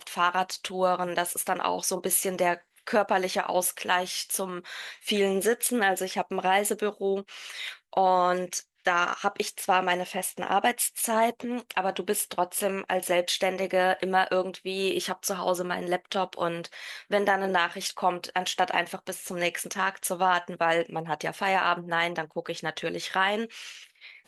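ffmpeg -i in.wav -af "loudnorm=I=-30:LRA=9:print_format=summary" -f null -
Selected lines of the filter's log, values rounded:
Input Integrated:    -27.4 LUFS
Input True Peak:      -8.5 dBTP
Input LRA:             2.1 LU
Input Threshold:     -37.6 LUFS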